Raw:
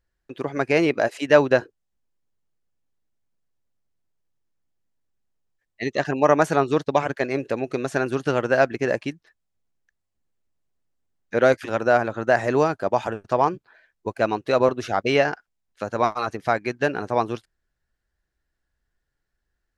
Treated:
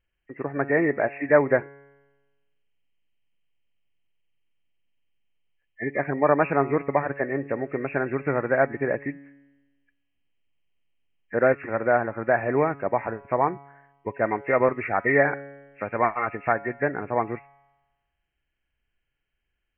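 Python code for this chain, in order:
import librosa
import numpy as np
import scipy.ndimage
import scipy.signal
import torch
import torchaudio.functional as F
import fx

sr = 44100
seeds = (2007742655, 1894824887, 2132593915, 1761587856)

y = fx.freq_compress(x, sr, knee_hz=1700.0, ratio=4.0)
y = fx.high_shelf(y, sr, hz=2200.0, db=10.0, at=(14.26, 16.53))
y = fx.comb_fb(y, sr, f0_hz=140.0, decay_s=1.2, harmonics='all', damping=0.0, mix_pct=50)
y = y * 10.0 ** (3.0 / 20.0)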